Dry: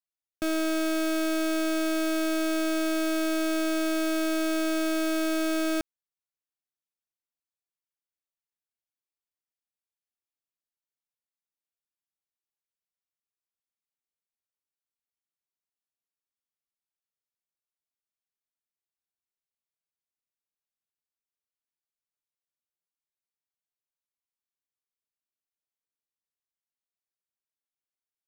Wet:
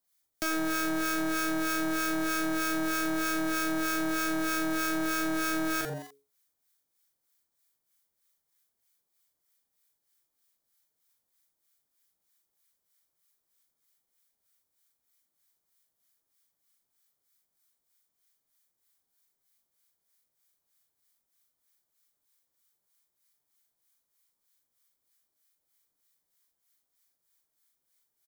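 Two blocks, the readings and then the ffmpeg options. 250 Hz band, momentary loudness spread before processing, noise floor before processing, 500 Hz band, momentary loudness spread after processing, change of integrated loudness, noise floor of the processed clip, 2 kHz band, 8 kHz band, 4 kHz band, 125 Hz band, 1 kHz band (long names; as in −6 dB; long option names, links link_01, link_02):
−4.5 dB, 1 LU, below −85 dBFS, −7.0 dB, 2 LU, −2.0 dB, −82 dBFS, +2.5 dB, +1.0 dB, −2.5 dB, can't be measured, +3.0 dB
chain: -filter_complex "[0:a]asplit=2[link_01][link_02];[link_02]adelay=40,volume=-5dB[link_03];[link_01][link_03]amix=inputs=2:normalize=0,asplit=4[link_04][link_05][link_06][link_07];[link_05]adelay=85,afreqshift=140,volume=-13.5dB[link_08];[link_06]adelay=170,afreqshift=280,volume=-22.6dB[link_09];[link_07]adelay=255,afreqshift=420,volume=-31.7dB[link_10];[link_04][link_08][link_09][link_10]amix=inputs=4:normalize=0,acrossover=split=980|2300[link_11][link_12][link_13];[link_11]acompressor=threshold=-35dB:ratio=4[link_14];[link_12]acompressor=threshold=-39dB:ratio=4[link_15];[link_13]acompressor=threshold=-46dB:ratio=4[link_16];[link_14][link_15][link_16]amix=inputs=3:normalize=0,acrossover=split=1000[link_17][link_18];[link_17]aeval=exprs='val(0)*(1-0.7/2+0.7/2*cos(2*PI*3.2*n/s))':channel_layout=same[link_19];[link_18]aeval=exprs='val(0)*(1-0.7/2-0.7/2*cos(2*PI*3.2*n/s))':channel_layout=same[link_20];[link_19][link_20]amix=inputs=2:normalize=0,asplit=2[link_21][link_22];[link_22]alimiter=level_in=15dB:limit=-24dB:level=0:latency=1:release=418,volume=-15dB,volume=-1dB[link_23];[link_21][link_23]amix=inputs=2:normalize=0,aeval=exprs='0.0531*sin(PI/2*2*val(0)/0.0531)':channel_layout=same,crystalizer=i=1:c=0,bandreject=frequency=2700:width=6.7,volume=-1.5dB"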